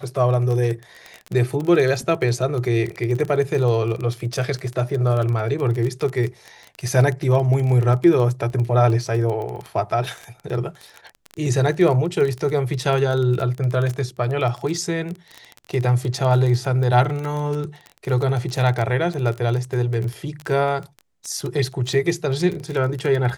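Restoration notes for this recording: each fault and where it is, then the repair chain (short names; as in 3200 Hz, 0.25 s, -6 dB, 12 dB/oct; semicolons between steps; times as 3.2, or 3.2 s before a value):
crackle 20/s -24 dBFS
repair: de-click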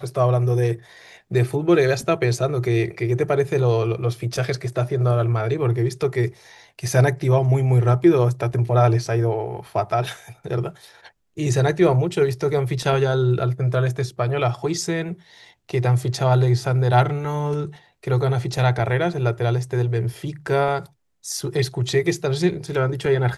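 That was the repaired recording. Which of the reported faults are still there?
none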